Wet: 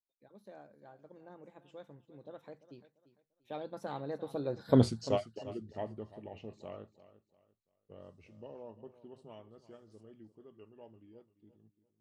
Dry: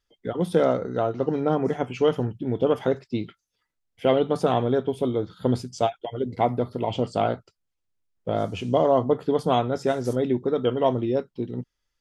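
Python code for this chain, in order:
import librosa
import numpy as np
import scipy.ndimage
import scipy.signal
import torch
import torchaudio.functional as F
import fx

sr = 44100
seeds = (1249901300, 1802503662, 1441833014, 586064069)

p1 = fx.doppler_pass(x, sr, speed_mps=46, closest_m=5.5, pass_at_s=4.81)
y = p1 + fx.echo_feedback(p1, sr, ms=344, feedback_pct=30, wet_db=-16, dry=0)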